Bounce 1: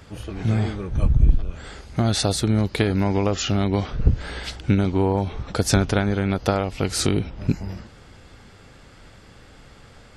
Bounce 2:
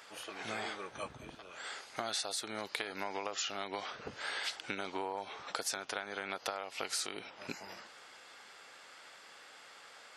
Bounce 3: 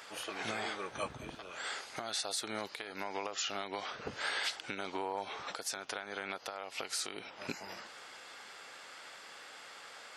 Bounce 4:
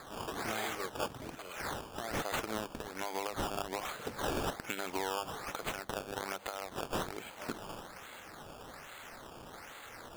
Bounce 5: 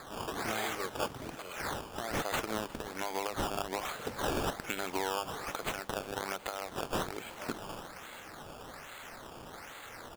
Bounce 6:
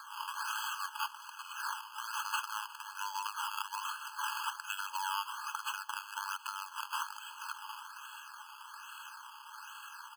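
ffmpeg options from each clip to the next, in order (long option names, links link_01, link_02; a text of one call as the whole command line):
ffmpeg -i in.wav -af "highpass=780,acompressor=threshold=-32dB:ratio=10,volume=-1.5dB" out.wav
ffmpeg -i in.wav -af "alimiter=level_in=3.5dB:limit=-24dB:level=0:latency=1:release=436,volume=-3.5dB,volume=4dB" out.wav
ffmpeg -i in.wav -af "bandreject=frequency=50:width_type=h:width=6,bandreject=frequency=100:width_type=h:width=6,bandreject=frequency=150:width_type=h:width=6,bandreject=frequency=200:width_type=h:width=6,acrusher=samples=15:mix=1:aa=0.000001:lfo=1:lforange=15:lforate=1.2,volume=1.5dB" out.wav
ffmpeg -i in.wav -af "aecho=1:1:358|716|1074|1432:0.0891|0.0481|0.026|0.014,volume=2dB" out.wav
ffmpeg -i in.wav -af "afftfilt=real='re*eq(mod(floor(b*sr/1024/840),2),1)':imag='im*eq(mod(floor(b*sr/1024/840),2),1)':win_size=1024:overlap=0.75,volume=2dB" out.wav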